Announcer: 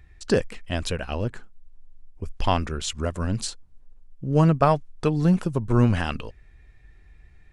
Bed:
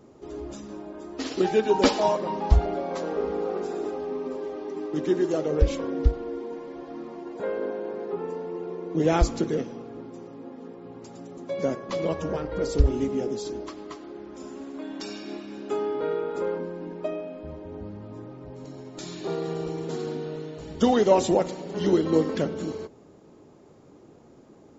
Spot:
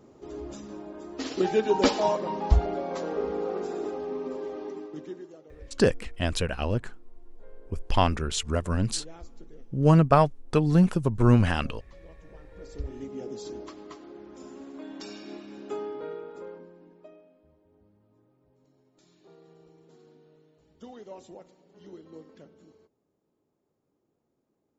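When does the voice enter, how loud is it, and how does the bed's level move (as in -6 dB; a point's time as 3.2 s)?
5.50 s, 0.0 dB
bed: 4.67 s -2 dB
5.42 s -25.5 dB
12.18 s -25.5 dB
13.5 s -5 dB
15.66 s -5 dB
17.56 s -25 dB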